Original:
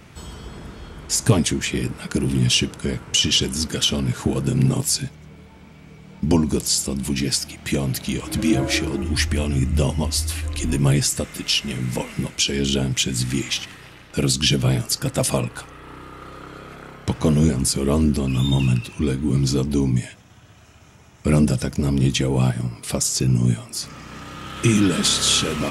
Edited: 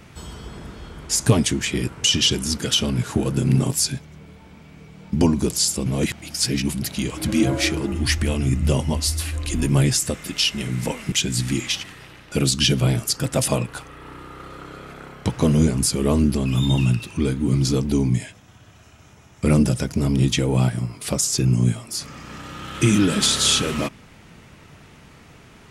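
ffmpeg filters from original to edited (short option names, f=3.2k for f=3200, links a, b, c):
-filter_complex "[0:a]asplit=5[a][b][c][d][e];[a]atrim=end=1.882[f];[b]atrim=start=2.978:end=6.962[g];[c]atrim=start=6.958:end=7.922,asetpts=PTS-STARTPTS,areverse[h];[d]atrim=start=7.918:end=12.222[i];[e]atrim=start=12.938[j];[f][g]acrossfade=d=0.004:c1=hsin:c2=hsin[k];[k][h]acrossfade=d=0.004:c1=hsin:c2=hsin[l];[l][i]acrossfade=d=0.004:c1=hsin:c2=hsin[m];[m][j]acrossfade=d=0.004:c1=hsin:c2=hsin"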